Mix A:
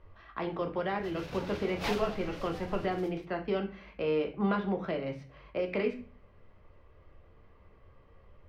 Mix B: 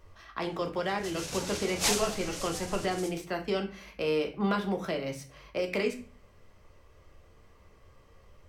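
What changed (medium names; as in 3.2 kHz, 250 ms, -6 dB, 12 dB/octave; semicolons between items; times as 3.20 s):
background: add low-pass 7.5 kHz 12 dB/octave; master: remove distance through air 340 m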